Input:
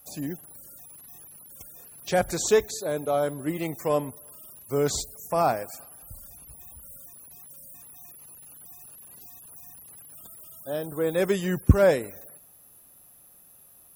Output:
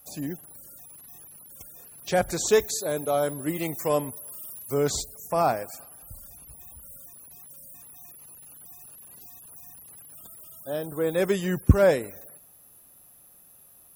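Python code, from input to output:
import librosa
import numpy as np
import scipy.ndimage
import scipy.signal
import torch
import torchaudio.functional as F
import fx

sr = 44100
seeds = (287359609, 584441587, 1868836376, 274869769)

y = fx.high_shelf(x, sr, hz=4300.0, db=7.0, at=(2.53, 4.74))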